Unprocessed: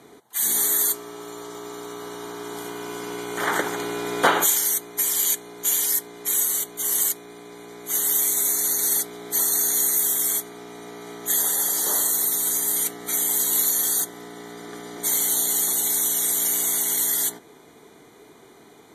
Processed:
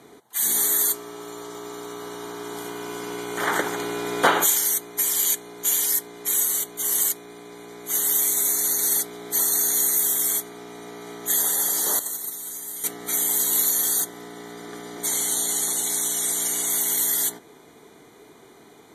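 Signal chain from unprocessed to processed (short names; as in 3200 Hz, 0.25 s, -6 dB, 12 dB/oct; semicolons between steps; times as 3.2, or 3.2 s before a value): 11.99–12.84 gate -20 dBFS, range -11 dB; 15.06–16.7 LPF 11000 Hz 24 dB/oct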